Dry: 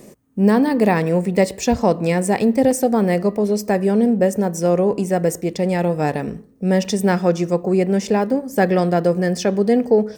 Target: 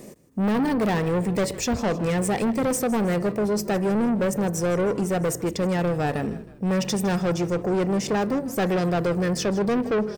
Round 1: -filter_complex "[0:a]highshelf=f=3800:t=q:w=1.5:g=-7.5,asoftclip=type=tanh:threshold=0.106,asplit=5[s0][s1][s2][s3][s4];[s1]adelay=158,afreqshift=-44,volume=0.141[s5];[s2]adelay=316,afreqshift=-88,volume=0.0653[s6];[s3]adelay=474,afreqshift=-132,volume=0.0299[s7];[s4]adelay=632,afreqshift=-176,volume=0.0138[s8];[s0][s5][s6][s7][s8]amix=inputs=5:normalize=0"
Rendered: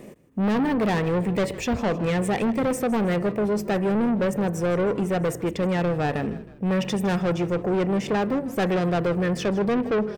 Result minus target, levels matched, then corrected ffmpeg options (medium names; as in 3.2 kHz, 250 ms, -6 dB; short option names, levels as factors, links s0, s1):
8 kHz band -7.5 dB
-filter_complex "[0:a]asoftclip=type=tanh:threshold=0.106,asplit=5[s0][s1][s2][s3][s4];[s1]adelay=158,afreqshift=-44,volume=0.141[s5];[s2]adelay=316,afreqshift=-88,volume=0.0653[s6];[s3]adelay=474,afreqshift=-132,volume=0.0299[s7];[s4]adelay=632,afreqshift=-176,volume=0.0138[s8];[s0][s5][s6][s7][s8]amix=inputs=5:normalize=0"